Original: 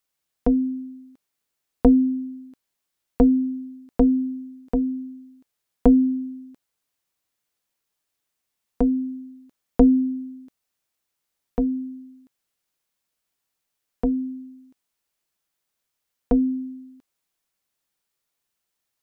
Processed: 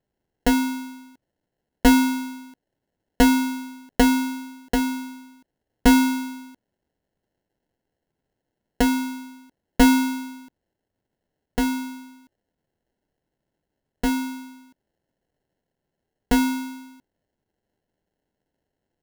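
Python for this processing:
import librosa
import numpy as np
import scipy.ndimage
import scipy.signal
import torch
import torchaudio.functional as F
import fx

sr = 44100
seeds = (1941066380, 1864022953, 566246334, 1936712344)

y = fx.vibrato(x, sr, rate_hz=0.73, depth_cents=7.5)
y = fx.sample_hold(y, sr, seeds[0], rate_hz=1200.0, jitter_pct=0)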